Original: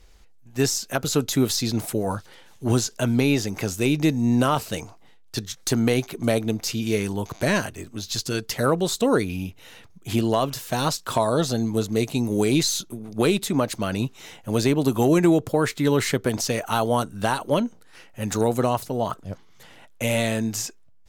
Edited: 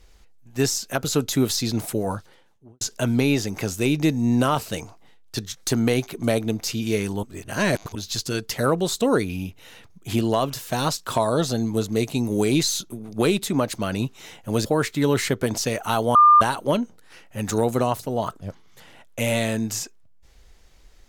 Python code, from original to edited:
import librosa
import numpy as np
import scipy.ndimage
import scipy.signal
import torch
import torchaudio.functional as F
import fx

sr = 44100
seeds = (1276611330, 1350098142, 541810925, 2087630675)

y = fx.studio_fade_out(x, sr, start_s=2.0, length_s=0.81)
y = fx.edit(y, sr, fx.reverse_span(start_s=7.23, length_s=0.72),
    fx.cut(start_s=14.65, length_s=0.83),
    fx.bleep(start_s=16.98, length_s=0.26, hz=1200.0, db=-9.0), tone=tone)